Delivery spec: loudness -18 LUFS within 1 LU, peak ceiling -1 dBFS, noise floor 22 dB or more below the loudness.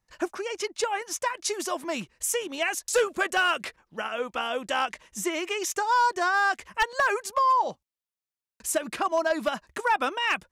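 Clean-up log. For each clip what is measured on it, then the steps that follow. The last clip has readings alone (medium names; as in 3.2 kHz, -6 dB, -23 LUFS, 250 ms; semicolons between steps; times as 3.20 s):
clipped samples 0.5%; clipping level -16.5 dBFS; loudness -27.0 LUFS; peak level -16.5 dBFS; loudness target -18.0 LUFS
-> clip repair -16.5 dBFS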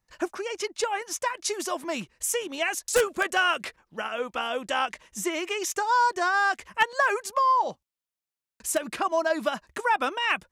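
clipped samples 0.0%; loudness -27.0 LUFS; peak level -7.5 dBFS; loudness target -18.0 LUFS
-> trim +9 dB; peak limiter -1 dBFS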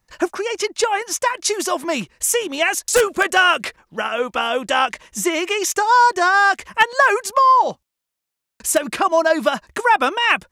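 loudness -18.0 LUFS; peak level -1.0 dBFS; noise floor -82 dBFS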